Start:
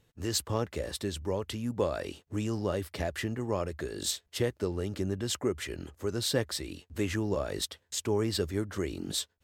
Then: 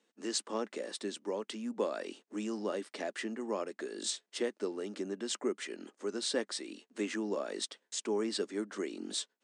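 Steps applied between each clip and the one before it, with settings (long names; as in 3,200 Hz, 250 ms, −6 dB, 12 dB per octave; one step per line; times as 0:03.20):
Chebyshev band-pass filter 210–9,200 Hz, order 5
level −3 dB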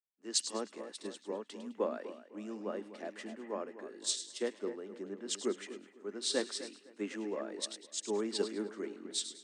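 echo with a time of its own for lows and highs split 2,300 Hz, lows 255 ms, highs 105 ms, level −8 dB
multiband upward and downward expander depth 100%
level −4 dB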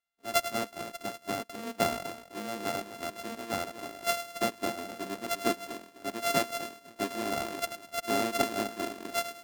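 samples sorted by size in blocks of 64 samples
level +5.5 dB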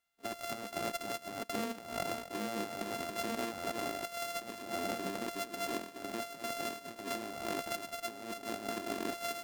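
compressor whose output falls as the input rises −40 dBFS, ratio −1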